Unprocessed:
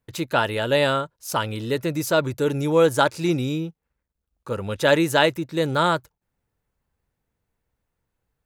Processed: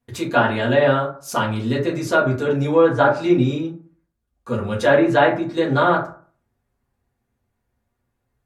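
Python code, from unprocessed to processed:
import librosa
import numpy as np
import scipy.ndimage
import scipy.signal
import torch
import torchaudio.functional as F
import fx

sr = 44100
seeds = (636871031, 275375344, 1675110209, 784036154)

y = fx.env_lowpass_down(x, sr, base_hz=2100.0, full_db=-14.5)
y = fx.rev_fdn(y, sr, rt60_s=0.44, lf_ratio=1.1, hf_ratio=0.45, size_ms=25.0, drr_db=-5.5)
y = F.gain(torch.from_numpy(y), -3.0).numpy()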